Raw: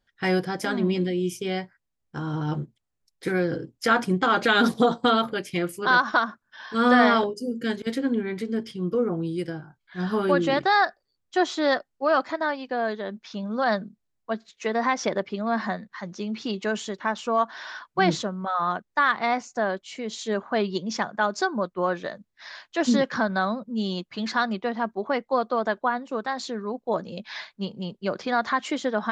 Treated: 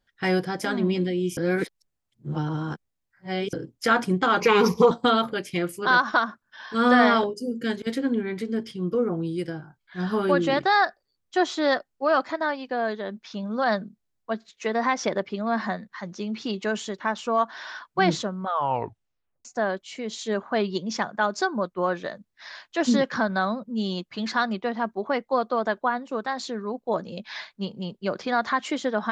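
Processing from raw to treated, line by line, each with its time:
1.37–3.53 reverse
4.4–4.91 ripple EQ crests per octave 0.8, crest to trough 18 dB
18.46 tape stop 0.99 s

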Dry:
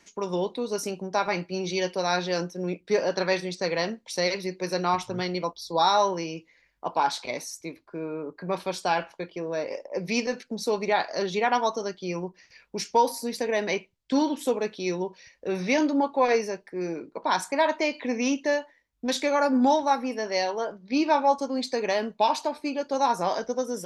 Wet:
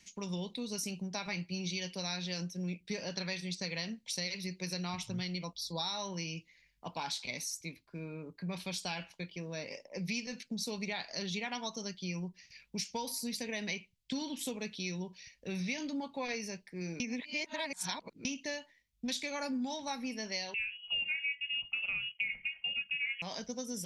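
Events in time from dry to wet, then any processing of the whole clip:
17–18.25 reverse
20.54–23.22 inverted band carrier 3100 Hz
whole clip: band shelf 690 Hz -14 dB 2.8 oct; compressor 5:1, threshold -34 dBFS

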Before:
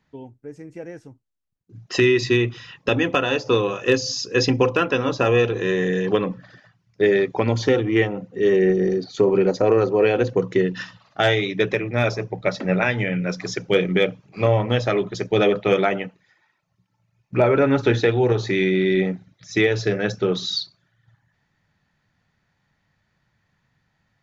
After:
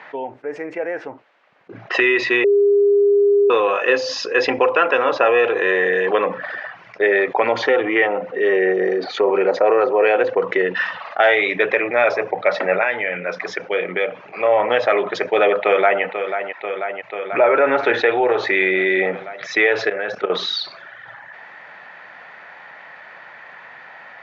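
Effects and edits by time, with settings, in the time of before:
0.74–1.94 air absorption 90 m
2.44–3.5 bleep 405 Hz -9 dBFS
12.72–14.53 dip -9.5 dB, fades 0.13 s
15.62–16.03 echo throw 0.49 s, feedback 70%, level -16.5 dB
19.87–20.3 level quantiser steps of 18 dB
whole clip: Chebyshev band-pass 590–2200 Hz, order 2; fast leveller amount 50%; gain +4 dB

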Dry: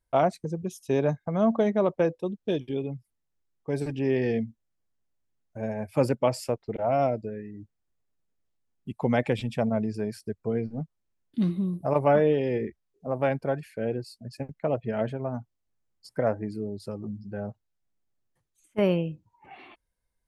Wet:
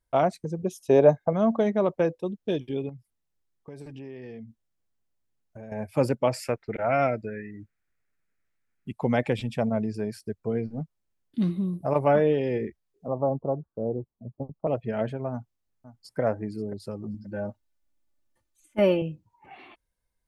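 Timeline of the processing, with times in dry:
0.59–1.33 bell 600 Hz +11 dB 1.4 oct
2.89–5.72 compressor 5:1, threshold -39 dBFS
6.33–8.91 band shelf 1800 Hz +11.5 dB 1.1 oct
13.08–14.67 steep low-pass 1200 Hz 96 dB/oct
15.31–16.2 echo throw 0.53 s, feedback 15%, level -15 dB
17.14–19.02 comb 3.4 ms, depth 89%

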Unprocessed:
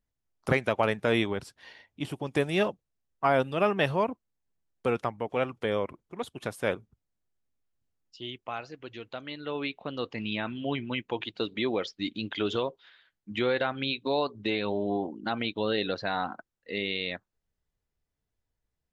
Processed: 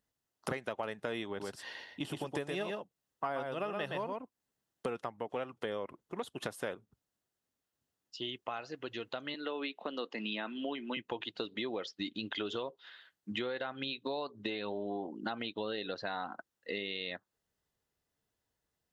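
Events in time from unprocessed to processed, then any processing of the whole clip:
1.28–4.86 echo 0.119 s -4.5 dB
9.34–10.97 steep high-pass 190 Hz
whole clip: HPF 230 Hz 6 dB/oct; notch 2300 Hz, Q 9.8; compressor 5:1, threshold -40 dBFS; gain +4.5 dB

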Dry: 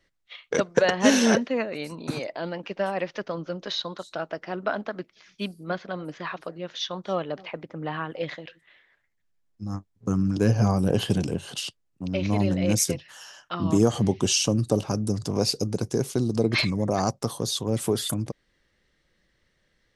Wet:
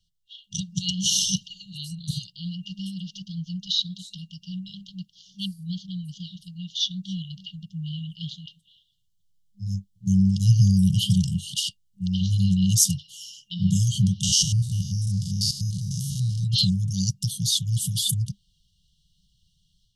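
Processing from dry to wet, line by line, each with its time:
14.23–16.44 stepped spectrum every 0.1 s
whole clip: FFT band-reject 200–2800 Hz; AGC gain up to 6 dB

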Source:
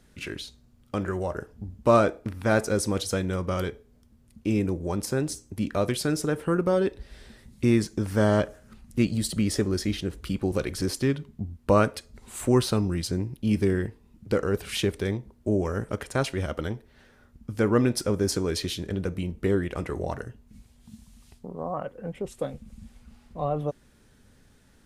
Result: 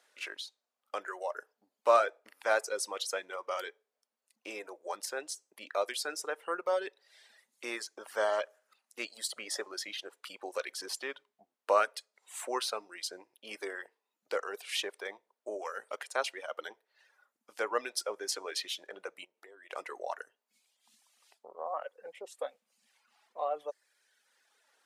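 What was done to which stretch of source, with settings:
19.24–19.7 compressor, threshold -38 dBFS
whole clip: HPF 560 Hz 24 dB/oct; reverb removal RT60 1.1 s; high shelf 9600 Hz -6.5 dB; gain -2 dB

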